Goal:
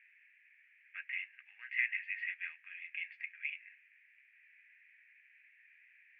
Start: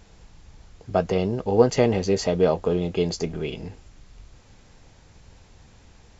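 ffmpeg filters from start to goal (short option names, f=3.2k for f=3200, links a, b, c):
-af "asuperpass=centerf=2100:order=8:qfactor=2.5,volume=4dB"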